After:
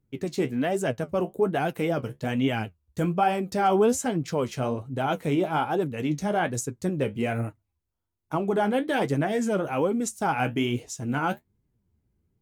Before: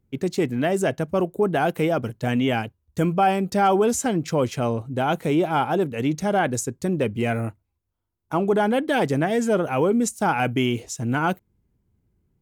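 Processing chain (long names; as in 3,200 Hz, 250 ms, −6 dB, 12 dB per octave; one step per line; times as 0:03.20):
flanger 1.2 Hz, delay 6.3 ms, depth 9.8 ms, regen +48%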